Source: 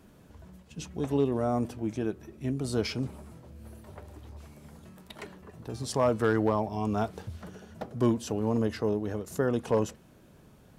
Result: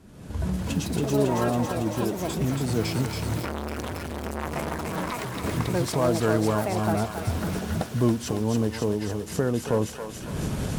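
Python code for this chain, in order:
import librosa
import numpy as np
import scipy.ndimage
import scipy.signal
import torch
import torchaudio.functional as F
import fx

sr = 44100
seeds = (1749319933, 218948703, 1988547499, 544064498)

y = fx.cvsd(x, sr, bps=64000)
y = fx.recorder_agc(y, sr, target_db=-23.5, rise_db_per_s=43.0, max_gain_db=30)
y = fx.low_shelf(y, sr, hz=66.0, db=-10.0)
y = fx.echo_pitch(y, sr, ms=393, semitones=7, count=2, db_per_echo=-3.0)
y = fx.low_shelf(y, sr, hz=160.0, db=12.0)
y = fx.echo_thinned(y, sr, ms=277, feedback_pct=80, hz=1100.0, wet_db=-3.5)
y = fx.transformer_sat(y, sr, knee_hz=1000.0, at=(3.4, 5.44))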